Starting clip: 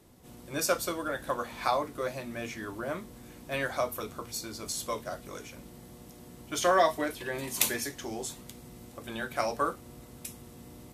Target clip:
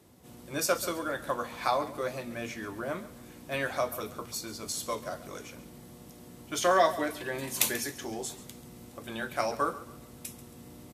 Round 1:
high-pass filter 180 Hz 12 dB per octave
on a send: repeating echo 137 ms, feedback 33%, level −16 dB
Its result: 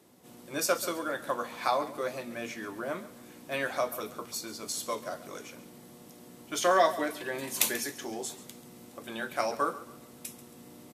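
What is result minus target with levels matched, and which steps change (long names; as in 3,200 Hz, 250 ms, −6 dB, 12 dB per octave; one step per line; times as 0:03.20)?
125 Hz band −5.5 dB
change: high-pass filter 64 Hz 12 dB per octave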